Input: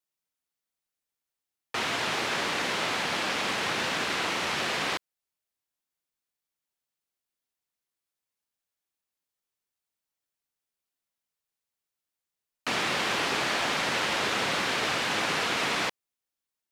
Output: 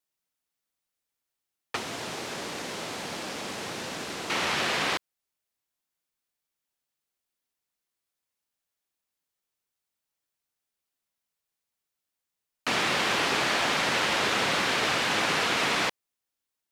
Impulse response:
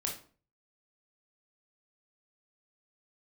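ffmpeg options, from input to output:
-filter_complex "[0:a]asettb=1/sr,asplit=3[link_01][link_02][link_03];[link_01]atrim=end=1.764[link_04];[link_02]atrim=start=1.76:end=4.3,asetpts=PTS-STARTPTS,afade=type=in:duration=0.004:curve=qsin,afade=type=out:start_time=2.536:duration=0.004:curve=qsin,acrossover=split=730|2100|5100[link_05][link_06][link_07][link_08];[link_05]acompressor=threshold=-39dB:ratio=4[link_09];[link_06]acompressor=threshold=-47dB:ratio=4[link_10];[link_07]acompressor=threshold=-48dB:ratio=4[link_11];[link_08]acompressor=threshold=-44dB:ratio=4[link_12];[link_09][link_10][link_11][link_12]amix=inputs=4:normalize=0[link_13];[link_03]atrim=start=4.296[link_14];[link_04][link_13]acrossfade=duration=0.004:curve1=hsin:curve2=qsin[link_15];[link_15][link_14]acrossfade=duration=0.004:curve1=qsin:curve2=hsin,volume=2dB"

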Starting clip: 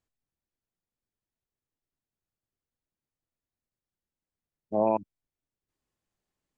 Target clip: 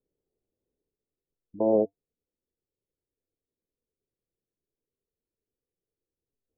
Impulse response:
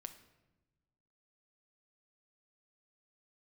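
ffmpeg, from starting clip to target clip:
-af "areverse,flanger=delay=2.1:depth=3.7:regen=-72:speed=0.34:shape=sinusoidal,lowpass=frequency=450:width_type=q:width=3.9,volume=3.5dB"

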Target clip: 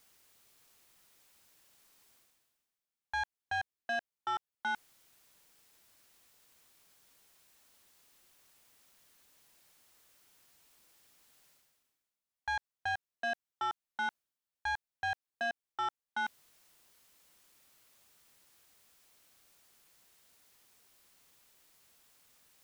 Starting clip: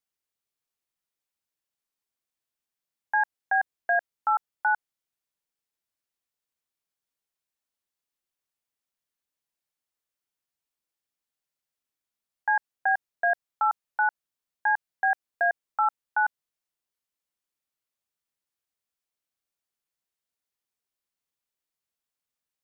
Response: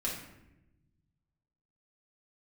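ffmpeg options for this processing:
-af "areverse,acompressor=mode=upward:threshold=-38dB:ratio=2.5,areverse,asoftclip=type=tanh:threshold=-24dB,volume=-5.5dB"

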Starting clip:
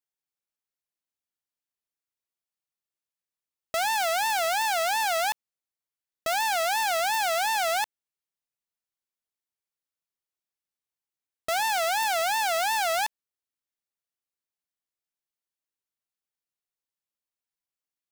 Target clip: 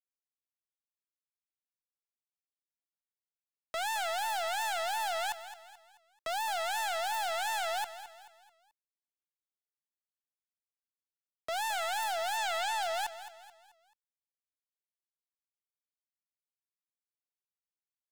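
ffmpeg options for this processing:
ffmpeg -i in.wav -filter_complex "[0:a]asettb=1/sr,asplit=3[link_01][link_02][link_03];[link_01]atrim=end=12.374[link_04];[link_02]atrim=start=12.37:end=12.83,asetpts=PTS-STARTPTS,afade=type=in:duration=0.004:curve=qsin,afade=type=out:start_time=0.456:duration=0.004:curve=qsin,lowpass=6900[link_05];[link_03]atrim=start=12.826[link_06];[link_04][link_05]acrossfade=duration=0.004:curve1=hsin:curve2=qsin[link_07];[link_07][link_06]acrossfade=duration=0.004:curve1=qsin:curve2=hsin,acrossover=split=510[link_08][link_09];[link_09]acontrast=76[link_10];[link_08][link_10]amix=inputs=2:normalize=0,alimiter=limit=-18.5dB:level=0:latency=1,aeval=exprs='val(0)*gte(abs(val(0)),0.01)':channel_layout=same,acrossover=split=970[link_11][link_12];[link_11]aeval=exprs='val(0)*(1-0.5/2+0.5/2*cos(2*PI*1.4*n/s))':channel_layout=same[link_13];[link_12]aeval=exprs='val(0)*(1-0.5/2-0.5/2*cos(2*PI*1.4*n/s))':channel_layout=same[link_14];[link_13][link_14]amix=inputs=2:normalize=0,asoftclip=type=tanh:threshold=-34.5dB,asplit=2[link_15][link_16];[link_16]aecho=0:1:217|434|651|868:0.224|0.0918|0.0376|0.0154[link_17];[link_15][link_17]amix=inputs=2:normalize=0,volume=3.5dB" out.wav

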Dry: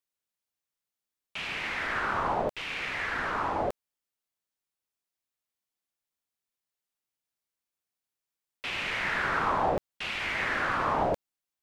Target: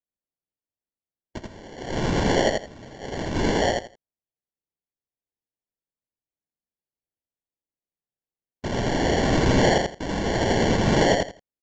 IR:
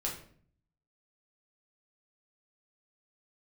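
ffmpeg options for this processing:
-filter_complex "[0:a]asettb=1/sr,asplit=3[link_01][link_02][link_03];[link_01]atrim=end=1.384[link_04];[link_02]atrim=start=1.38:end=3.36,asetpts=PTS-STARTPTS,afade=type=in:duration=0.004:curve=qsin,afade=type=out:start_time=1.976:duration=0.004:curve=qsin,agate=range=-14dB:threshold=-30dB:ratio=16:detection=peak[link_05];[link_03]atrim=start=3.356[link_06];[link_04][link_05]acrossfade=duration=0.004:curve1=hsin:curve2=qsin[link_07];[link_07][link_06]acrossfade=duration=0.004:curve1=qsin:curve2=hsin,afftdn=noise_reduction=22:noise_floor=-48,acrusher=samples=35:mix=1:aa=0.000001,acontrast=76,asplit=2[link_08][link_09];[link_09]aecho=0:1:83|166|249:0.708|0.142|0.0283[link_10];[link_08][link_10]amix=inputs=2:normalize=0,aresample=16000,aresample=44100"

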